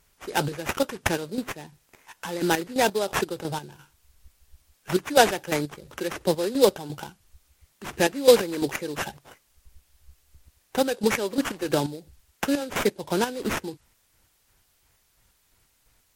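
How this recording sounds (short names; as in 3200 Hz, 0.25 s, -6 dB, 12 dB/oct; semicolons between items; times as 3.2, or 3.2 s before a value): aliases and images of a low sample rate 4400 Hz, jitter 20%; chopped level 2.9 Hz, depth 65%, duty 40%; a quantiser's noise floor 12-bit, dither triangular; MP3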